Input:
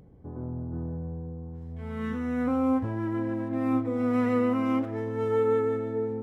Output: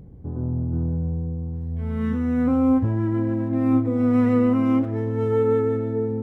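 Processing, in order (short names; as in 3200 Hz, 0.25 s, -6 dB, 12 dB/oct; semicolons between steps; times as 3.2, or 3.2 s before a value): low shelf 310 Hz +12 dB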